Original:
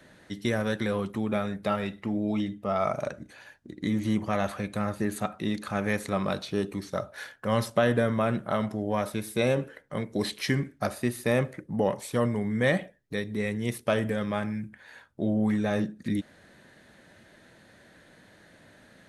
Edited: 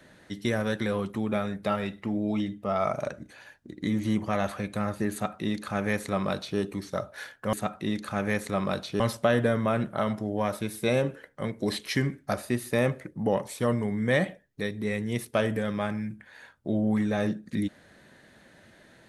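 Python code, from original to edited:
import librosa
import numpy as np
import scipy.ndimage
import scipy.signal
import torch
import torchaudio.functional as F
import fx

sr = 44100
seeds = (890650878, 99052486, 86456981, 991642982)

y = fx.edit(x, sr, fx.duplicate(start_s=5.12, length_s=1.47, to_s=7.53), tone=tone)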